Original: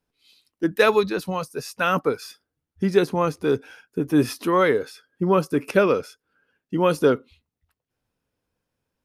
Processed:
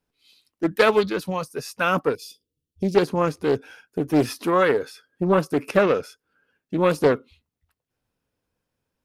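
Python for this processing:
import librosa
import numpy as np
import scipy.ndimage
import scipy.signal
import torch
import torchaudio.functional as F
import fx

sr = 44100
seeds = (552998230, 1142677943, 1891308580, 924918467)

y = fx.ellip_bandstop(x, sr, low_hz=480.0, high_hz=2900.0, order=3, stop_db=40, at=(2.15, 2.95))
y = fx.doppler_dist(y, sr, depth_ms=0.42)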